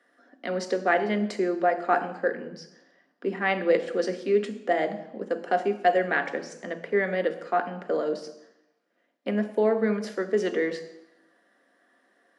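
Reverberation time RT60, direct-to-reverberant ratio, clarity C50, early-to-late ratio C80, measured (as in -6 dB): 0.85 s, 6.5 dB, 12.0 dB, 14.5 dB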